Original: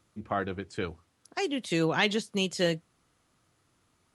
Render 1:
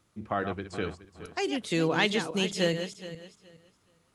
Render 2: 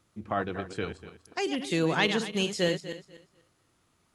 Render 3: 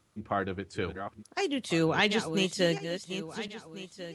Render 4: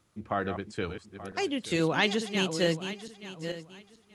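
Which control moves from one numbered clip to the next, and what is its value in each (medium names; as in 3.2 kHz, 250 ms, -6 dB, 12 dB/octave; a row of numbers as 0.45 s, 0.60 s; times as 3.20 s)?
backward echo that repeats, time: 210 ms, 122 ms, 696 ms, 440 ms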